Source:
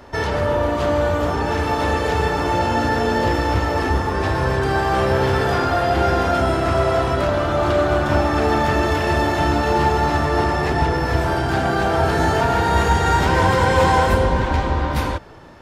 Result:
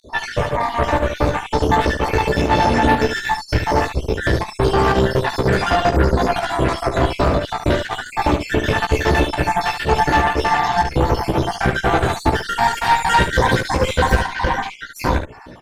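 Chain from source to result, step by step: random holes in the spectrogram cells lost 67%; band-stop 1.3 kHz, Q 12; in parallel at +0.5 dB: peak limiter -15 dBFS, peak gain reduction 9.5 dB; on the sum: Chebyshev shaper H 6 -16 dB, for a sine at -3 dBFS; volume shaper 122 bpm, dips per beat 1, -21 dB, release 79 ms; on a send: early reflections 16 ms -6 dB, 72 ms -8 dB; on the sum: trim -1 dB

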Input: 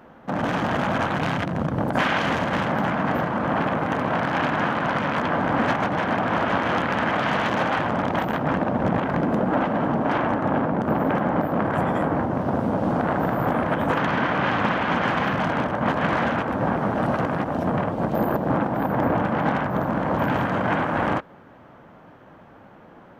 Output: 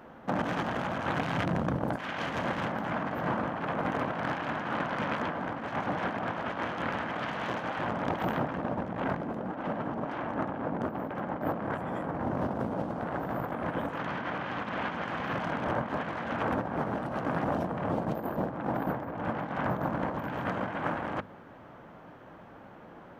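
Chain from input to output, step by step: hum notches 50/100/150/200/250 Hz; compressor with a negative ratio -26 dBFS, ratio -0.5; trim -5.5 dB

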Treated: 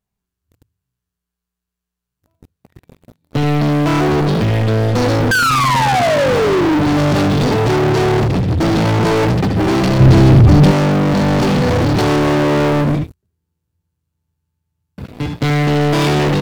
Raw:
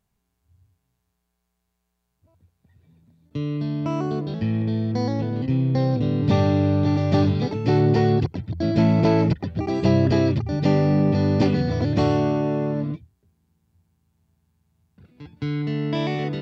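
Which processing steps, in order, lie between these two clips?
5.31–6.78 s: painted sound fall 290–1600 Hz -14 dBFS; on a send: early reflections 16 ms -8.5 dB, 75 ms -8.5 dB; on the sum: peak limiter -15 dBFS, peak gain reduction 12 dB; waveshaping leveller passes 5; 10.00–10.71 s: bass shelf 240 Hz +11 dB; trim +3.5 dB

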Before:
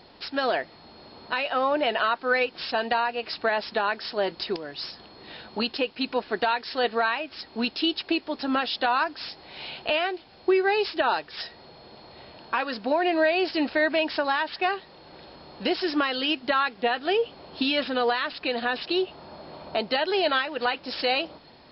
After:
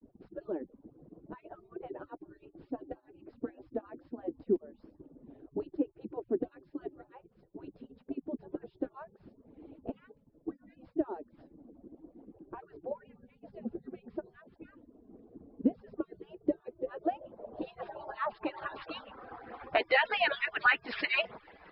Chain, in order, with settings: harmonic-percussive separation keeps percussive; low-pass sweep 300 Hz -> 2 kHz, 16.14–19.83 s; expander -57 dBFS

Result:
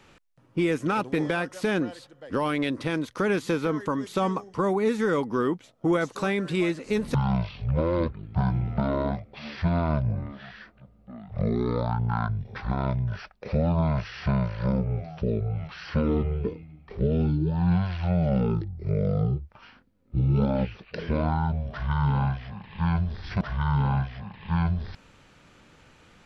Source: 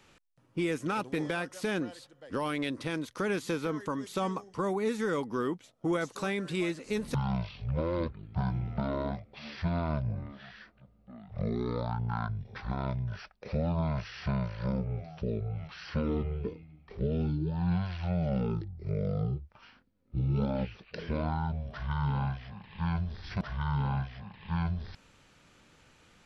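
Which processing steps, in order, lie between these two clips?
treble shelf 3.9 kHz -6.5 dB; trim +6.5 dB

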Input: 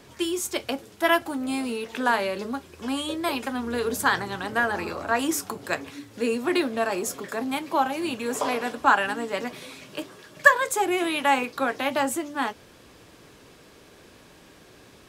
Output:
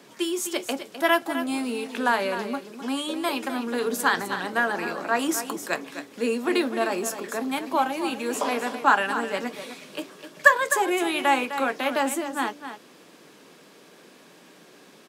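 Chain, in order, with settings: steep high-pass 160 Hz 36 dB/octave; on a send: delay 256 ms -10.5 dB

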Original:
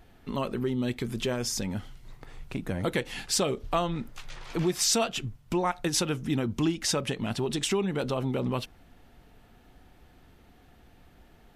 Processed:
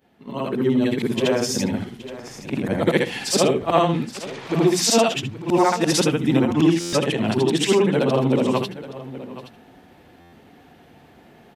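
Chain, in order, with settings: short-time spectra conjugated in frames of 167 ms; high-pass 140 Hz 12 dB/octave; peaking EQ 1.3 kHz -4.5 dB 0.37 oct; hum notches 60/120/180 Hz; delay 822 ms -15.5 dB; level rider gain up to 11.5 dB; treble shelf 3.5 kHz -8 dB; buffer glitch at 6.80/10.20 s, samples 512, times 10; trim +3 dB

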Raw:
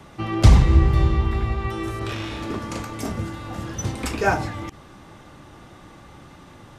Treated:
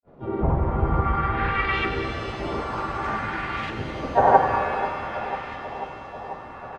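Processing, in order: low-pass that closes with the level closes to 1.3 kHz, closed at -13 dBFS; tilt shelf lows -9.5 dB, about 940 Hz; granulator 100 ms, grains 20 per s, pitch spread up and down by 0 st; LFO low-pass saw up 0.54 Hz 400–2400 Hz; harmony voices -7 st -6 dB, +3 st -3 dB; on a send: bucket-brigade echo 491 ms, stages 4096, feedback 78%, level -14 dB; on the sum: pitch-shifted reverb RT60 3.1 s, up +7 st, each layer -8 dB, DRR 5 dB

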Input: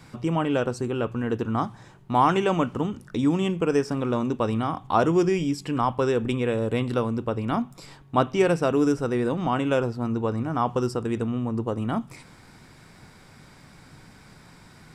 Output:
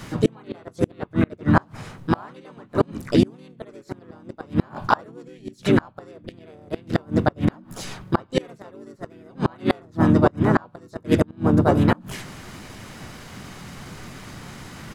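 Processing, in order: harmony voices -4 st -1 dB, +5 st 0 dB; inverted gate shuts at -11 dBFS, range -32 dB; trim +6.5 dB

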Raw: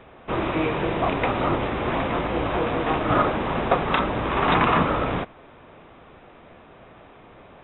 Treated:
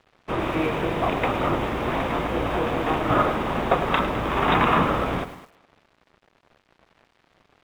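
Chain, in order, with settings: crossover distortion -44 dBFS; thinning echo 209 ms, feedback 19%, high-pass 260 Hz, level -16.5 dB; bit-crushed delay 104 ms, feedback 35%, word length 7-bit, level -12 dB

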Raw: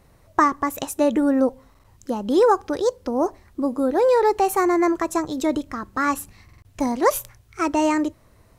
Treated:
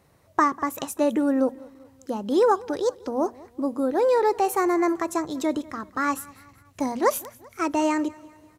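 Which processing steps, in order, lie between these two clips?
high-pass 91 Hz 12 dB/octave; hum notches 60/120/180/240 Hz; on a send: feedback delay 194 ms, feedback 49%, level -22 dB; on the sum: trim -3 dB

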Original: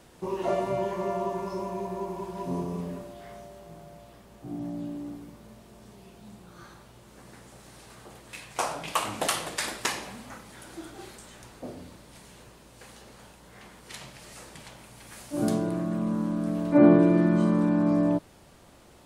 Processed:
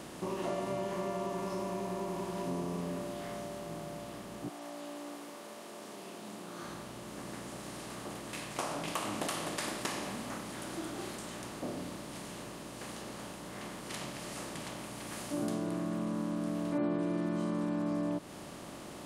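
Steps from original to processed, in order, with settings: spectral levelling over time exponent 0.6; 4.48–6.63 s: high-pass 750 Hz -> 190 Hz 12 dB/octave; compression 2.5:1, threshold -26 dBFS, peak gain reduction 10 dB; trim -7.5 dB

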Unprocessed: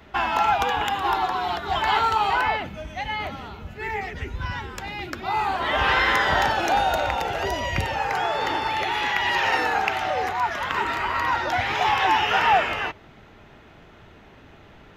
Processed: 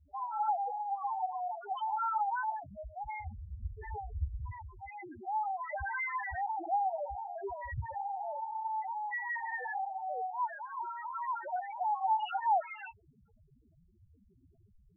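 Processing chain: 3.10–4.30 s: bass shelf 110 Hz +12 dB; loudest bins only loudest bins 2; trim -6.5 dB

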